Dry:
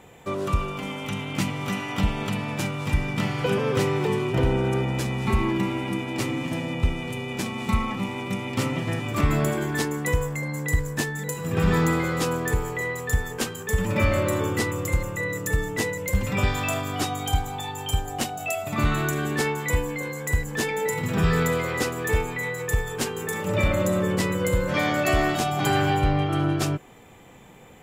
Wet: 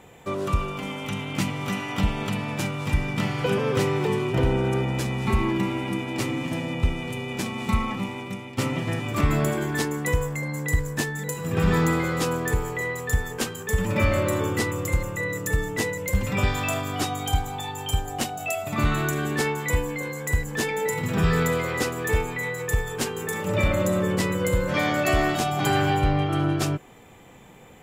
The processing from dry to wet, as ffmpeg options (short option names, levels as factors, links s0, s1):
-filter_complex "[0:a]asplit=2[s0][s1];[s0]atrim=end=8.58,asetpts=PTS-STARTPTS,afade=t=out:st=7.94:d=0.64:silence=0.298538[s2];[s1]atrim=start=8.58,asetpts=PTS-STARTPTS,afade=t=in:d=0.004:c=hsin:silence=0.298538[s3];[s2][s3]concat=n=2:v=0:a=1"